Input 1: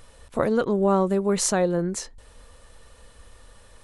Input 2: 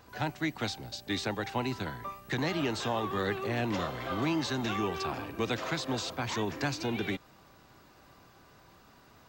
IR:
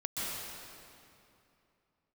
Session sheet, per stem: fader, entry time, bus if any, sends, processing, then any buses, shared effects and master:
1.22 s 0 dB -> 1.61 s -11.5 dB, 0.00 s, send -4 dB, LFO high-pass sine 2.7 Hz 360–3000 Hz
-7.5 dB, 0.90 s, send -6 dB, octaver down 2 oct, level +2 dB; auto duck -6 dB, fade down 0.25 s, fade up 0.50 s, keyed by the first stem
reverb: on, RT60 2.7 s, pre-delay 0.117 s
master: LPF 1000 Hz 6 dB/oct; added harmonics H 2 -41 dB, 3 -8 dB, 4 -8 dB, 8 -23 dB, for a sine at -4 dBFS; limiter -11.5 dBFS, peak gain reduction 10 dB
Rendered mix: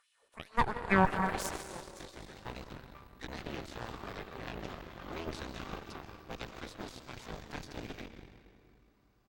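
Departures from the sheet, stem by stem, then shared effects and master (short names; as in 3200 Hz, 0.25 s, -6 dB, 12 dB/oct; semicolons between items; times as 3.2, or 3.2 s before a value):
stem 1 0.0 dB -> -8.0 dB; master: missing LPF 1000 Hz 6 dB/oct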